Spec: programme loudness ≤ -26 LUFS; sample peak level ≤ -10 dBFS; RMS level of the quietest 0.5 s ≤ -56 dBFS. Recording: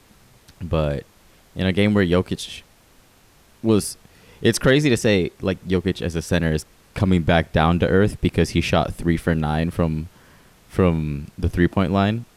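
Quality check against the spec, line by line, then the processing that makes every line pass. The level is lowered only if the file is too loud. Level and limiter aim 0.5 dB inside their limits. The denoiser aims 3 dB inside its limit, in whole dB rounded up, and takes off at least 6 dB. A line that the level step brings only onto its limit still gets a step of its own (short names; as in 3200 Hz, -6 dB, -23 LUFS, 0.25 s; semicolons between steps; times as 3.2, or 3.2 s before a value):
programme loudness -21.0 LUFS: fail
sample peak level -5.0 dBFS: fail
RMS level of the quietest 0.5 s -54 dBFS: fail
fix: gain -5.5 dB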